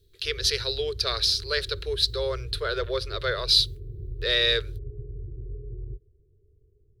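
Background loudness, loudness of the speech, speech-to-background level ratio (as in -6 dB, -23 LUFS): -39.5 LUFS, -25.0 LUFS, 14.5 dB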